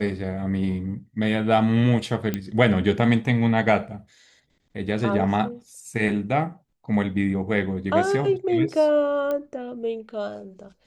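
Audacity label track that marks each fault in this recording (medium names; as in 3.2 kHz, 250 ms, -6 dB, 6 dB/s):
2.340000	2.340000	pop -12 dBFS
9.310000	9.310000	pop -16 dBFS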